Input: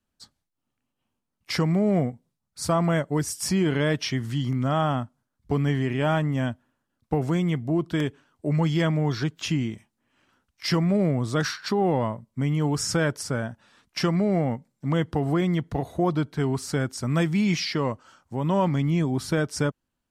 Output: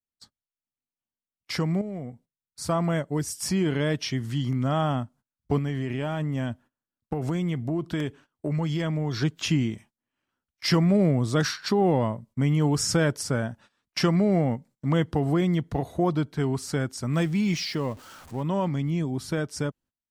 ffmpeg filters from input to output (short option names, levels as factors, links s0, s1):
-filter_complex "[0:a]asettb=1/sr,asplit=3[s0][s1][s2];[s0]atrim=end=1.814[s3];[s1]atrim=start=1.81:end=2.69,asetpts=PTS-STARTPTS,afade=t=in:d=0.004:c=qsin,afade=t=out:st=0.876:d=0.004:c=qsin,acompressor=threshold=0.0398:ratio=6:attack=3.2:release=140:knee=1:detection=peak[s4];[s2]atrim=start=2.686[s5];[s3][s4]acrossfade=d=0.004:c1=hsin:c2=qsin[s6];[s6][s5]acrossfade=d=0.004:c1=qsin:c2=hsin,asettb=1/sr,asplit=3[s7][s8][s9];[s7]atrim=end=5.584[s10];[s8]atrim=start=5.58:end=9.22,asetpts=PTS-STARTPTS,afade=t=in:d=0.004:c=qsin,afade=t=out:st=3.636:d=0.004:c=qsin,acompressor=threshold=0.0562:ratio=6:attack=3.2:release=140:knee=1:detection=peak[s11];[s9]atrim=start=9.216[s12];[s10][s11]acrossfade=d=0.004:c1=hsin:c2=qsin[s13];[s13][s12]acrossfade=d=0.004:c1=qsin:c2=hsin,asettb=1/sr,asplit=3[s14][s15][s16];[s14]atrim=end=17.134[s17];[s15]atrim=start=17.13:end=18.43,asetpts=PTS-STARTPTS,afade=t=in:d=0.004:c=qsin,afade=t=out:st=1.296:d=0.004:c=qsin,aeval=exprs='val(0)+0.5*0.01*sgn(val(0))':c=same[s18];[s16]atrim=start=18.426[s19];[s17][s18]acrossfade=d=0.004:c1=hsin:c2=qsin[s20];[s20][s19]acrossfade=d=0.004:c1=qsin:c2=hsin,agate=range=0.126:threshold=0.00316:ratio=16:detection=peak,adynamicequalizer=threshold=0.0112:dfrequency=1300:dqfactor=0.73:tfrequency=1300:tqfactor=0.73:attack=5:release=100:ratio=0.375:range=2.5:mode=cutabove:tftype=bell,dynaudnorm=f=570:g=17:m=1.78,volume=0.708"